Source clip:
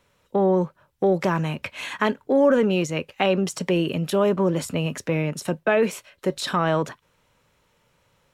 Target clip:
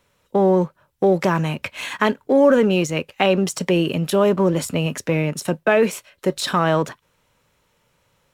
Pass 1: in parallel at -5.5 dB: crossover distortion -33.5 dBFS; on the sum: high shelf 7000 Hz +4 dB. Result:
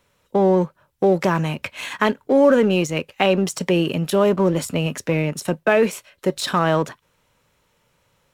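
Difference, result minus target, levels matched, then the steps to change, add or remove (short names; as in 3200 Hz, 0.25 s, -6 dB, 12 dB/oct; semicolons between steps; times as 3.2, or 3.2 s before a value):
crossover distortion: distortion +7 dB
change: crossover distortion -41 dBFS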